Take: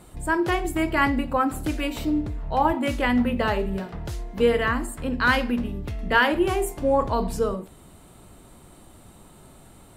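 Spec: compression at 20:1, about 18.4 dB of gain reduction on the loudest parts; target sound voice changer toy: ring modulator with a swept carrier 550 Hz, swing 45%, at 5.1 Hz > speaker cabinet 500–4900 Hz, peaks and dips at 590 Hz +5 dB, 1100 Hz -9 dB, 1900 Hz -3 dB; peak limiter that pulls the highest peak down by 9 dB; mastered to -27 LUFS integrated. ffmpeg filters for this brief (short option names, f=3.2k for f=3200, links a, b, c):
-af "acompressor=threshold=-33dB:ratio=20,alimiter=level_in=7dB:limit=-24dB:level=0:latency=1,volume=-7dB,aeval=exprs='val(0)*sin(2*PI*550*n/s+550*0.45/5.1*sin(2*PI*5.1*n/s))':c=same,highpass=500,equalizer=f=590:t=q:w=4:g=5,equalizer=f=1.1k:t=q:w=4:g=-9,equalizer=f=1.9k:t=q:w=4:g=-3,lowpass=f=4.9k:w=0.5412,lowpass=f=4.9k:w=1.3066,volume=18.5dB"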